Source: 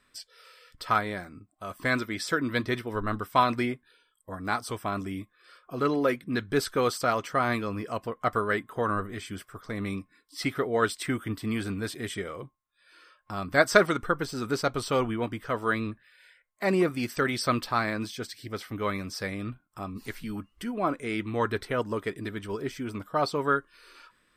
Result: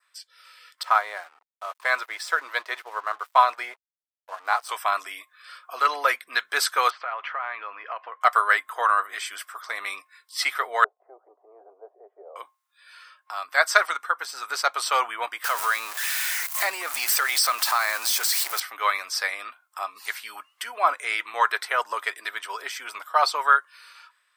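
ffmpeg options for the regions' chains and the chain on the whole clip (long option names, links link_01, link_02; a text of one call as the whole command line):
ffmpeg -i in.wav -filter_complex "[0:a]asettb=1/sr,asplit=3[link_01][link_02][link_03];[link_01]atrim=end=0.834[link_04];[link_02]atrim=start=0.83:end=4.69,asetpts=PTS-STARTPTS,afade=type=in:duration=0.004:curve=qsin,afade=type=out:start_time=3.856:duration=0.004:curve=qsin,highpass=510,tiltshelf=frequency=800:gain=9,aeval=exprs='sgn(val(0))*max(abs(val(0))-0.00188,0)':channel_layout=same[link_05];[link_03]atrim=start=4.686[link_06];[link_04][link_05]acrossfade=duration=0.004:curve1=hsin:curve2=qsin[link_07];[link_07][link_06]acrossfade=duration=0.004:curve1=qsin:curve2=hsin,asettb=1/sr,asplit=3[link_08][link_09][link_10];[link_08]atrim=end=6.904[link_11];[link_09]atrim=start=6.9:end=8.21,asetpts=PTS-STARTPTS,afade=type=in:duration=0.004:curve=qsin,afade=type=out:start_time=1.306:duration=0.004:curve=qsin,acompressor=threshold=-33dB:ratio=12:attack=3.2:release=140:knee=1:detection=peak,lowpass=frequency=2700:width=0.5412,lowpass=frequency=2700:width=1.3066[link_12];[link_10]atrim=start=8.206[link_13];[link_11][link_12]acrossfade=duration=0.004:curve1=hsin:curve2=qsin[link_14];[link_14][link_13]acrossfade=duration=0.004:curve1=qsin:curve2=hsin,asettb=1/sr,asplit=3[link_15][link_16][link_17];[link_15]atrim=end=10.844[link_18];[link_16]atrim=start=10.84:end=12.36,asetpts=PTS-STARTPTS,afade=type=in:duration=0.004:curve=qsin,afade=type=out:start_time=1.516:duration=0.004:curve=qsin,asuperpass=centerf=530:order=8:qfactor=1.3,acompressor=mode=upward:threshold=-57dB:ratio=2.5:attack=3.2:release=140:knee=2.83:detection=peak[link_19];[link_17]atrim=start=12.356[link_20];[link_18][link_19]acrossfade=duration=0.004:curve1=hsin:curve2=qsin[link_21];[link_21][link_20]acrossfade=duration=0.004:curve1=qsin:curve2=hsin,asettb=1/sr,asplit=3[link_22][link_23][link_24];[link_22]atrim=end=15.444[link_25];[link_23]atrim=start=15.44:end=18.6,asetpts=PTS-STARTPTS,afade=type=in:duration=0.004:curve=qsin,afade=type=out:start_time=3.156:duration=0.004:curve=qsin,aeval=exprs='val(0)+0.5*0.0178*sgn(val(0))':channel_layout=same,highshelf=frequency=7100:gain=11.5,acompressor=threshold=-28dB:ratio=3:attack=3.2:release=140:knee=1:detection=peak[link_26];[link_24]atrim=start=18.596[link_27];[link_25][link_26]acrossfade=duration=0.004:curve1=hsin:curve2=qsin[link_28];[link_28][link_27]acrossfade=duration=0.004:curve1=qsin:curve2=hsin,highpass=frequency=790:width=0.5412,highpass=frequency=790:width=1.3066,adynamicequalizer=threshold=0.00355:dfrequency=3200:dqfactor=2.1:tfrequency=3200:tqfactor=2.1:attack=5:release=100:ratio=0.375:range=2:mode=cutabove:tftype=bell,dynaudnorm=framelen=110:gausssize=13:maxgain=10.5dB" out.wav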